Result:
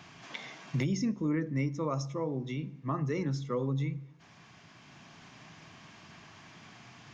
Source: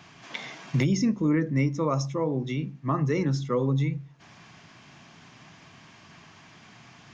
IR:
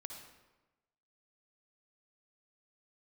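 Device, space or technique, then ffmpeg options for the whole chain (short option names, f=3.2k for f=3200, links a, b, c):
ducked reverb: -filter_complex "[0:a]asplit=3[a][b][c];[1:a]atrim=start_sample=2205[d];[b][d]afir=irnorm=-1:irlink=0[e];[c]apad=whole_len=314598[f];[e][f]sidechaincompress=threshold=-48dB:ratio=4:attack=16:release=865,volume=7dB[g];[a][g]amix=inputs=2:normalize=0,volume=-7.5dB"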